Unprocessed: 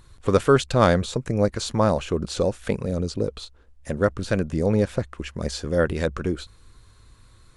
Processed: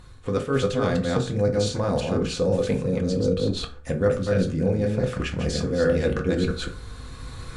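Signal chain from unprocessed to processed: chunks repeated in reverse 167 ms, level -2.5 dB; recorder AGC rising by 5.7 dB/s; dynamic bell 890 Hz, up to -5 dB, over -33 dBFS, Q 0.85; reverse; compression, threshold -26 dBFS, peak gain reduction 14.5 dB; reverse; treble shelf 9.8 kHz -10.5 dB; on a send: reverberation RT60 0.40 s, pre-delay 3 ms, DRR 2 dB; on the sum: trim +3.5 dB

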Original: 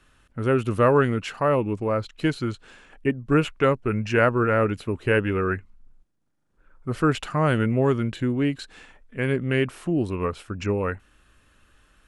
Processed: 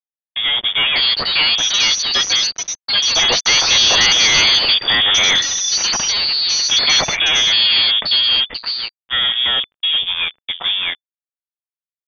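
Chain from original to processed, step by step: Doppler pass-by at 5.24 s, 14 m/s, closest 12 m; elliptic band-stop 280–620 Hz; de-hum 398.4 Hz, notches 14; fuzz box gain 43 dB, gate -49 dBFS; frequency inversion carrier 3.5 kHz; ever faster or slower copies 689 ms, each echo +5 st, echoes 2

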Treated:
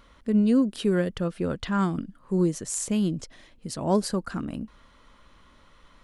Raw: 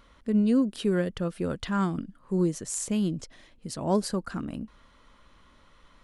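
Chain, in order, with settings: 1.27–1.79 s: treble shelf 9.4 kHz -10 dB; trim +2 dB

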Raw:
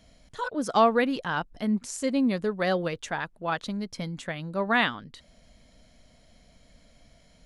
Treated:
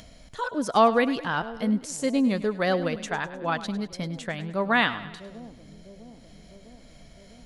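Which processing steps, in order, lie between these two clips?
two-band feedback delay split 560 Hz, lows 653 ms, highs 102 ms, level -14.5 dB; upward compressor, threshold -43 dBFS; trim +1.5 dB

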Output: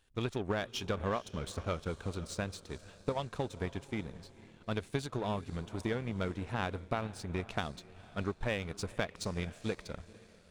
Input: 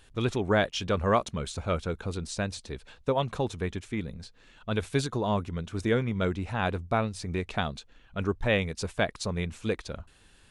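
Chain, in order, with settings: compression 6:1, threshold -27 dBFS, peak gain reduction 9 dB; on a send: echo that smears into a reverb 493 ms, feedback 51%, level -13.5 dB; on the sum: power-law waveshaper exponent 1.4

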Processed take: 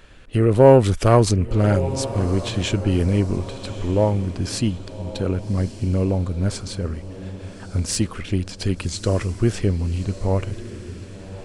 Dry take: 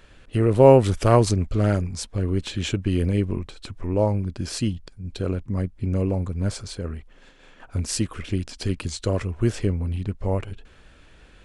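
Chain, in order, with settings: echo that smears into a reverb 1192 ms, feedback 43%, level -14 dB; in parallel at -4 dB: saturation -13 dBFS, distortion -11 dB; on the sum: trim -1 dB

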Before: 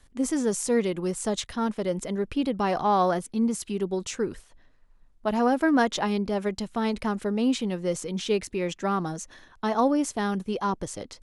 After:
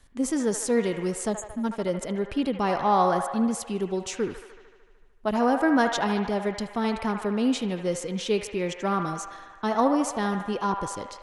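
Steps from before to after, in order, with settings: spectral selection erased 1.33–1.64 s, 320–6400 Hz; feedback echo behind a band-pass 75 ms, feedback 72%, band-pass 1.3 kHz, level -6 dB

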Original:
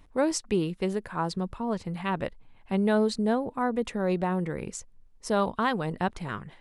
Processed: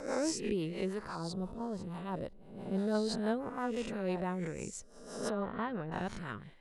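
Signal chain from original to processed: reverse spectral sustain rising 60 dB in 0.81 s; 1.15–2.95 s: peaking EQ 2.2 kHz -12.5 dB 1.2 oct; rotary cabinet horn 6 Hz; 5.30–5.92 s: tape spacing loss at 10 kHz 37 dB; trim -7 dB

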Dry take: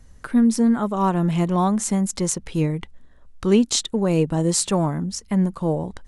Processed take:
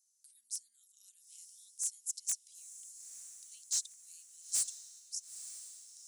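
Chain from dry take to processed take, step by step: inverse Chebyshev high-pass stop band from 1 kHz, stop band 80 dB; wavefolder -17.5 dBFS; echo that smears into a reverb 933 ms, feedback 51%, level -11.5 dB; trim -7 dB

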